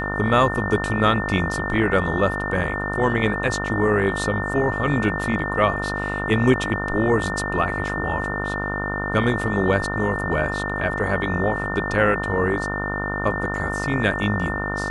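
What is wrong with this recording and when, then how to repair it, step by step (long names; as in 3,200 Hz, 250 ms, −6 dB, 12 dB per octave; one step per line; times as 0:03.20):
mains buzz 50 Hz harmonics 29 −28 dBFS
whistle 1,800 Hz −27 dBFS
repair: hum removal 50 Hz, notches 29
notch filter 1,800 Hz, Q 30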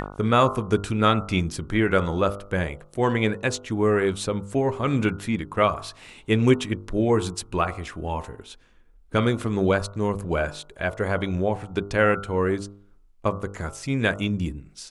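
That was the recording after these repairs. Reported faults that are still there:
none of them is left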